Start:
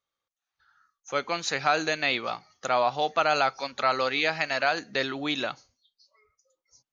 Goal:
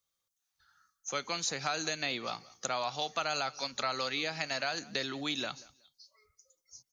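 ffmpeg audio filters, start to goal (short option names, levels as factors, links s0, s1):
-filter_complex "[0:a]bass=f=250:g=7,treble=f=4000:g=14,acrossover=split=130|1000[s0][s1][s2];[s0]acompressor=threshold=0.00126:ratio=4[s3];[s1]acompressor=threshold=0.0224:ratio=4[s4];[s2]acompressor=threshold=0.0398:ratio=4[s5];[s3][s4][s5]amix=inputs=3:normalize=0,asplit=2[s6][s7];[s7]aecho=0:1:185|370:0.075|0.0157[s8];[s6][s8]amix=inputs=2:normalize=0,volume=0.596"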